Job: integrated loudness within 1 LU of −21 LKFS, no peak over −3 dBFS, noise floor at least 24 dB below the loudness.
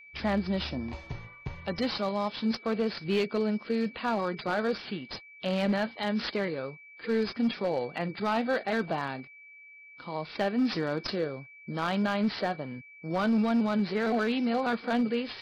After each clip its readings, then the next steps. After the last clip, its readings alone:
share of clipped samples 0.9%; peaks flattened at −21.0 dBFS; interfering tone 2,300 Hz; level of the tone −49 dBFS; integrated loudness −30.0 LKFS; sample peak −21.0 dBFS; target loudness −21.0 LKFS
→ clipped peaks rebuilt −21 dBFS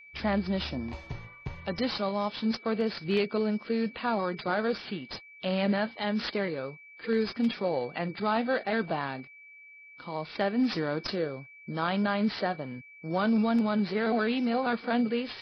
share of clipped samples 0.0%; interfering tone 2,300 Hz; level of the tone −49 dBFS
→ notch filter 2,300 Hz, Q 30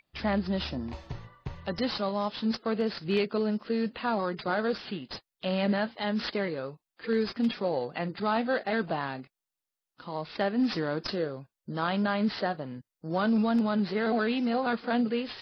interfering tone none found; integrated loudness −30.0 LKFS; sample peak −15.0 dBFS; target loudness −21.0 LKFS
→ level +9 dB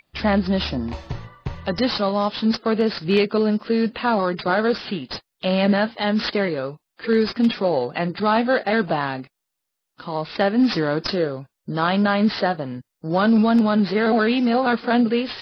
integrated loudness −21.0 LKFS; sample peak −6.0 dBFS; background noise floor −80 dBFS

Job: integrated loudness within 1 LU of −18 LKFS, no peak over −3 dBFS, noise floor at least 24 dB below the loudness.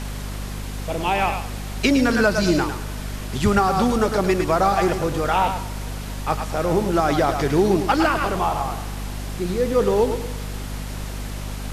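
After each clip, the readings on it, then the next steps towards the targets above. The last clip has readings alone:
mains hum 50 Hz; hum harmonics up to 250 Hz; level of the hum −28 dBFS; background noise floor −31 dBFS; target noise floor −46 dBFS; integrated loudness −22.0 LKFS; sample peak −6.5 dBFS; target loudness −18.0 LKFS
→ mains-hum notches 50/100/150/200/250 Hz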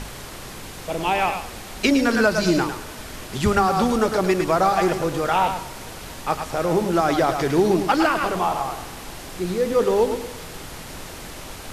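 mains hum none found; background noise floor −37 dBFS; target noise floor −45 dBFS
→ noise reduction from a noise print 8 dB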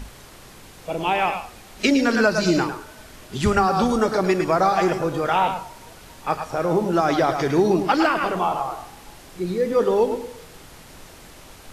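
background noise floor −45 dBFS; target noise floor −46 dBFS
→ noise reduction from a noise print 6 dB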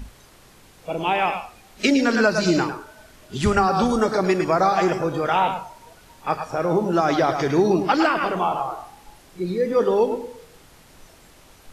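background noise floor −51 dBFS; integrated loudness −21.5 LKFS; sample peak −7.0 dBFS; target loudness −18.0 LKFS
→ level +3.5 dB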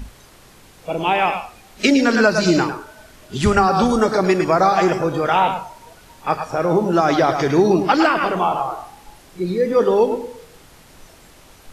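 integrated loudness −17.5 LKFS; sample peak −3.5 dBFS; background noise floor −47 dBFS

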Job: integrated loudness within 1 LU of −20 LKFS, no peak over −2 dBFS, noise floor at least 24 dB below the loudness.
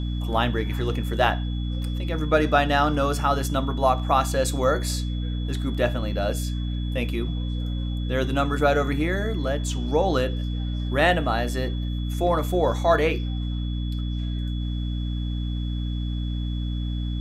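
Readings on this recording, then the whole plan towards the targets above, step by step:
mains hum 60 Hz; hum harmonics up to 300 Hz; level of the hum −24 dBFS; interfering tone 3,400 Hz; level of the tone −42 dBFS; integrated loudness −25.0 LKFS; sample peak −5.5 dBFS; target loudness −20.0 LKFS
→ mains-hum notches 60/120/180/240/300 Hz
notch filter 3,400 Hz, Q 30
level +5 dB
brickwall limiter −2 dBFS

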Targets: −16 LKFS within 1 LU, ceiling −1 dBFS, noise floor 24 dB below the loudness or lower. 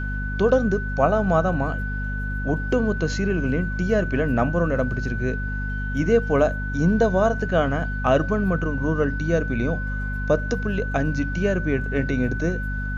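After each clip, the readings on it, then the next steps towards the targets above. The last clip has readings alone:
mains hum 50 Hz; hum harmonics up to 250 Hz; level of the hum −25 dBFS; interfering tone 1,500 Hz; level of the tone −31 dBFS; integrated loudness −23.0 LKFS; sample peak −6.0 dBFS; target loudness −16.0 LKFS
→ mains-hum notches 50/100/150/200/250 Hz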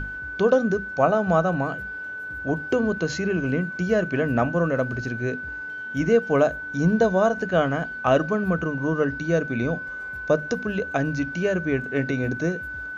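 mains hum none found; interfering tone 1,500 Hz; level of the tone −31 dBFS
→ notch filter 1,500 Hz, Q 30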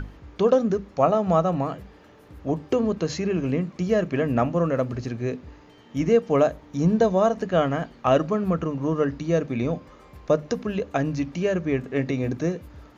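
interfering tone none found; integrated loudness −24.0 LKFS; sample peak −7.5 dBFS; target loudness −16.0 LKFS
→ level +8 dB
brickwall limiter −1 dBFS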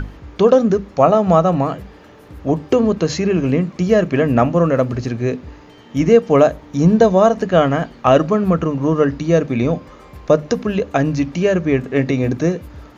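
integrated loudness −16.5 LKFS; sample peak −1.0 dBFS; background noise floor −43 dBFS

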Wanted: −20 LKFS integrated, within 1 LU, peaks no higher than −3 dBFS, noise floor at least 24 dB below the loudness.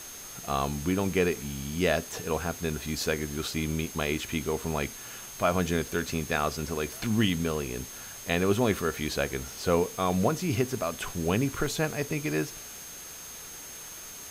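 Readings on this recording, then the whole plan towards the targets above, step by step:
interfering tone 6,400 Hz; level of the tone −44 dBFS; background noise floor −43 dBFS; target noise floor −54 dBFS; integrated loudness −29.5 LKFS; sample peak −11.0 dBFS; target loudness −20.0 LKFS
→ notch filter 6,400 Hz, Q 30
noise reduction from a noise print 11 dB
level +9.5 dB
brickwall limiter −3 dBFS

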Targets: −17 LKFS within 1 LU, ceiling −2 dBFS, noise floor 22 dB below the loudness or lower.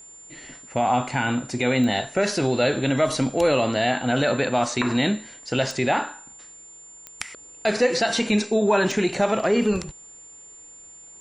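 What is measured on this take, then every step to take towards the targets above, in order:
number of clicks 4; interfering tone 7,200 Hz; level of the tone −43 dBFS; integrated loudness −22.5 LKFS; sample peak −8.5 dBFS; target loudness −17.0 LKFS
→ click removal
notch filter 7,200 Hz, Q 30
level +5.5 dB

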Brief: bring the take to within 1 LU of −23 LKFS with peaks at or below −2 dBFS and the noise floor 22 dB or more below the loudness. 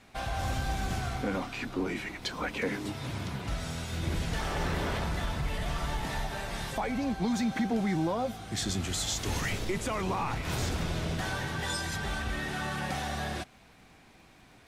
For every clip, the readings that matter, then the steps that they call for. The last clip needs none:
crackle rate 19 per second; integrated loudness −33.0 LKFS; sample peak −20.0 dBFS; target loudness −23.0 LKFS
→ click removal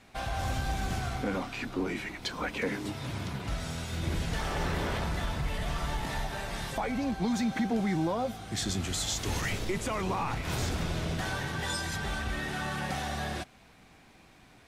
crackle rate 0 per second; integrated loudness −33.0 LKFS; sample peak −20.0 dBFS; target loudness −23.0 LKFS
→ level +10 dB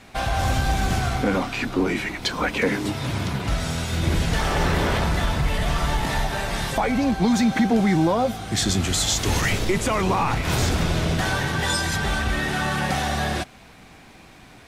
integrated loudness −23.0 LKFS; sample peak −10.0 dBFS; background noise floor −47 dBFS

